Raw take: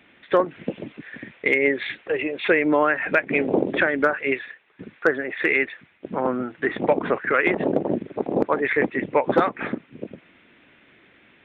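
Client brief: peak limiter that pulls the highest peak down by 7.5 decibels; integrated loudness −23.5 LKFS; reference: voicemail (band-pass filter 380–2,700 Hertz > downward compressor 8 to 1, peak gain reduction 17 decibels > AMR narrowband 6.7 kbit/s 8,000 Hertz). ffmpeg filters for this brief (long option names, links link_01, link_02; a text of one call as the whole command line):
ffmpeg -i in.wav -af "alimiter=limit=-14dB:level=0:latency=1,highpass=380,lowpass=2700,acompressor=threshold=-37dB:ratio=8,volume=19dB" -ar 8000 -c:a libopencore_amrnb -b:a 6700 out.amr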